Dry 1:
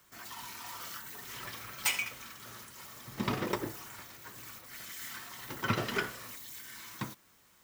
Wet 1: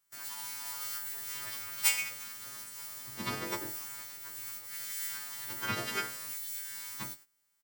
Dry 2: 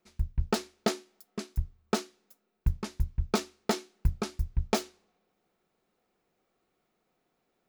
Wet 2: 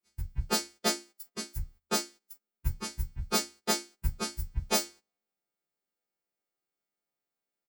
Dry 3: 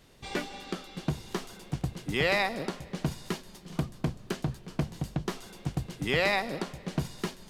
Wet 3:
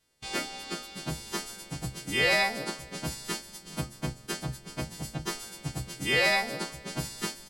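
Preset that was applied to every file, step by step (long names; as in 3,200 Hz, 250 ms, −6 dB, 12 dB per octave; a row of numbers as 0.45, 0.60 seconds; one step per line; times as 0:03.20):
every partial snapped to a pitch grid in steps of 2 semitones
double-tracking delay 32 ms −14 dB
noise gate −48 dBFS, range −17 dB
normalise the peak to −12 dBFS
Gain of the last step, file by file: −4.5, −2.0, −0.5 decibels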